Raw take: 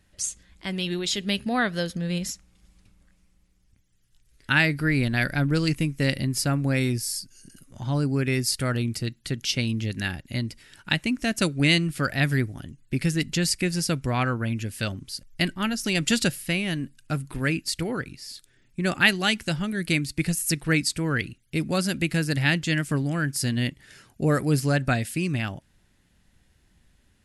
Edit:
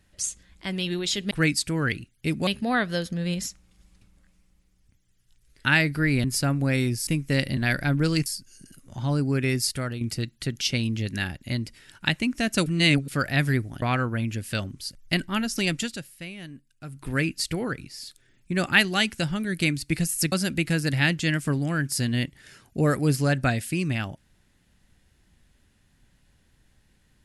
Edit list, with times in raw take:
5.08–5.77 s: swap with 6.27–7.10 s
8.45–8.85 s: fade out, to -9 dB
11.50–11.92 s: reverse
12.66–14.10 s: delete
15.94–17.39 s: dip -12.5 dB, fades 0.24 s
20.60–21.76 s: move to 1.31 s

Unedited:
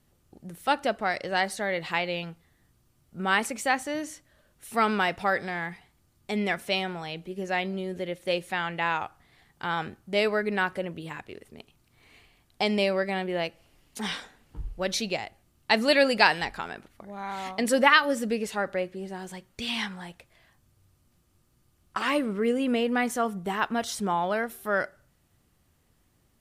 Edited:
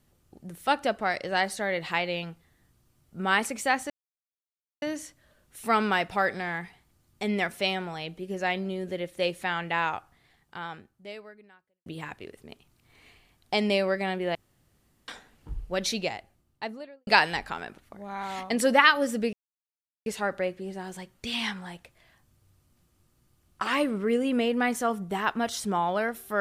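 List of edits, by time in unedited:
3.90 s: insert silence 0.92 s
9.00–10.94 s: fade out quadratic
13.43–14.16 s: room tone
15.07–16.15 s: studio fade out
18.41 s: insert silence 0.73 s

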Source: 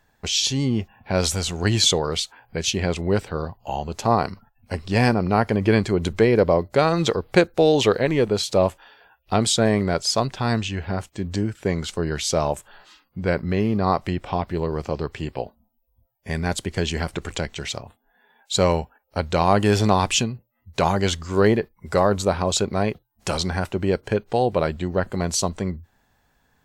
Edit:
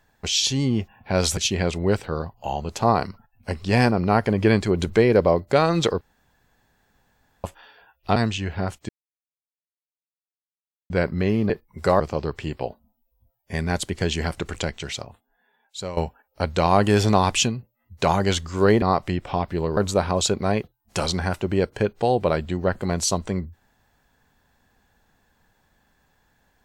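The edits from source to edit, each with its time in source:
1.37–2.60 s: delete
7.24–8.67 s: room tone
9.39–10.47 s: delete
11.20–13.21 s: mute
13.81–14.76 s: swap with 21.58–22.08 s
17.42–18.73 s: fade out, to -16 dB

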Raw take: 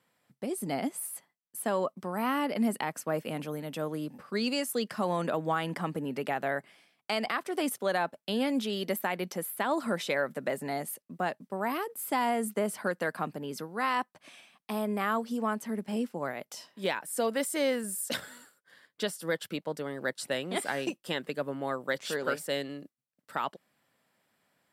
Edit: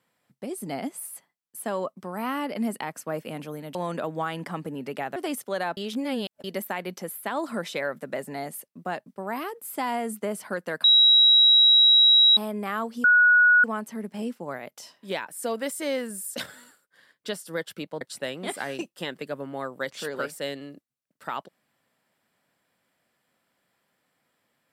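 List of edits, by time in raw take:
3.75–5.05 s: delete
6.46–7.50 s: delete
8.11–8.78 s: reverse
13.18–14.71 s: bleep 3.86 kHz -13 dBFS
15.38 s: add tone 1.46 kHz -13.5 dBFS 0.60 s
19.75–20.09 s: delete

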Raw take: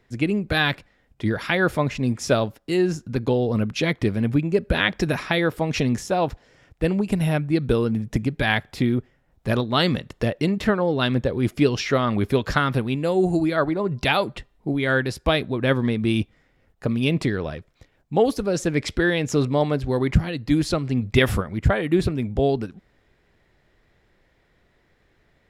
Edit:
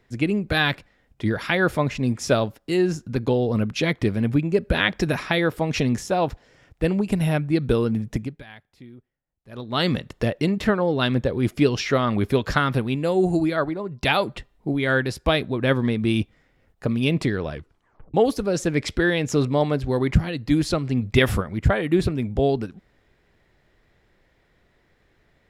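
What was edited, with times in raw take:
8.04–9.91 s: dip -23 dB, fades 0.40 s
13.45–14.03 s: fade out, to -12.5 dB
17.52 s: tape stop 0.62 s

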